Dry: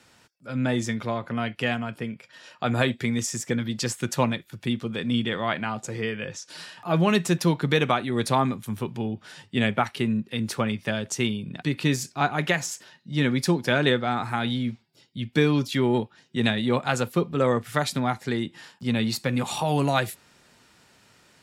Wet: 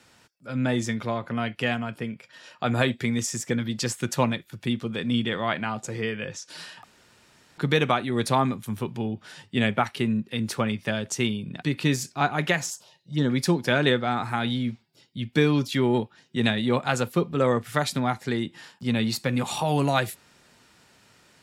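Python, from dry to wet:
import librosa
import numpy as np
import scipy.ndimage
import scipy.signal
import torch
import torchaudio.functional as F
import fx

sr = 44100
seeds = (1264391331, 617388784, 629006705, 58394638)

y = fx.env_phaser(x, sr, low_hz=190.0, high_hz=2400.0, full_db=-21.5, at=(12.7, 13.3))
y = fx.edit(y, sr, fx.room_tone_fill(start_s=6.84, length_s=0.74), tone=tone)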